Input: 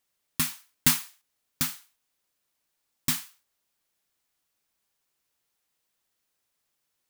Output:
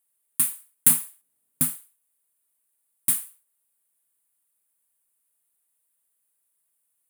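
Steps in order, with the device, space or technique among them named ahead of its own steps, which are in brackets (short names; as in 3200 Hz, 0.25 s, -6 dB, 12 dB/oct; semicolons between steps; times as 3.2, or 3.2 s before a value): 0.9–1.76 bell 200 Hz +13 dB 2.9 oct; budget condenser microphone (HPF 100 Hz 6 dB/oct; resonant high shelf 7400 Hz +10.5 dB, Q 3); gain -6.5 dB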